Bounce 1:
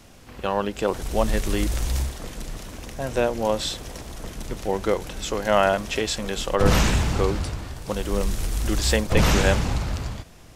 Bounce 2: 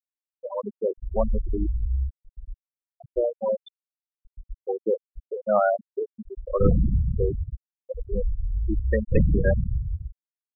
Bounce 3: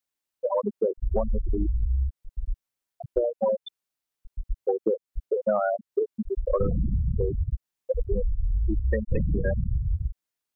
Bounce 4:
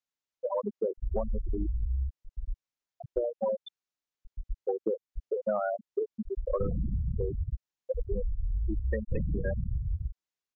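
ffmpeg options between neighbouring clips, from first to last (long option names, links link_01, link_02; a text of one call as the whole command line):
ffmpeg -i in.wav -af "afftfilt=real='re*gte(hypot(re,im),0.355)':imag='im*gte(hypot(re,im),0.355)':win_size=1024:overlap=0.75" out.wav
ffmpeg -i in.wav -af "acompressor=threshold=-30dB:ratio=10,volume=9dB" out.wav
ffmpeg -i in.wav -af "aresample=16000,aresample=44100,volume=-5.5dB" out.wav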